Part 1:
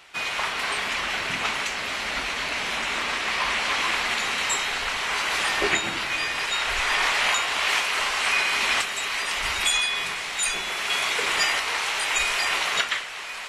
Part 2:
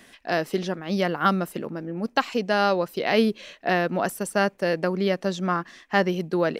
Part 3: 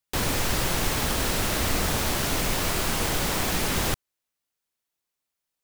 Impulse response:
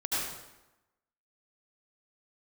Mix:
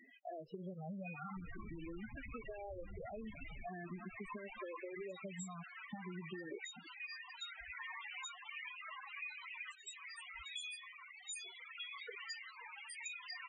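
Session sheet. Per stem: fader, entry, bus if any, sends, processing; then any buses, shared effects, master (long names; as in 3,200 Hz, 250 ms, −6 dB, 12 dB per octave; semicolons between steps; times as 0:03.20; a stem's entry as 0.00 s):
−14.5 dB, 0.90 s, no bus, no send, high-pass filter 40 Hz 24 dB per octave; reverb reduction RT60 1.5 s
−0.5 dB, 0.00 s, bus A, no send, harmonic and percussive parts rebalanced percussive −10 dB; downward compressor 6 to 1, threshold −27 dBFS, peak gain reduction 11.5 dB; frequency shifter mixed with the dry sound +0.43 Hz
0:03.31 −11 dB → 0:03.71 −22 dB, 1.10 s, bus A, no send, no processing
bus A: 0.0 dB, bit reduction 10 bits; downward compressor 12 to 1, threshold −39 dBFS, peak gain reduction 14 dB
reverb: not used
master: spectral peaks only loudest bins 8; downward compressor, threshold −43 dBFS, peak gain reduction 8 dB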